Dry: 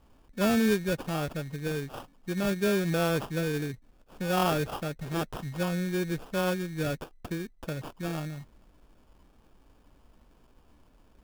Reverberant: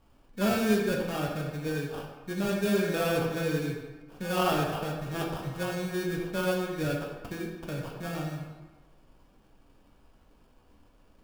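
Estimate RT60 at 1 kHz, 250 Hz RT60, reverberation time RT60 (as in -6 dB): 1.3 s, 1.3 s, 1.2 s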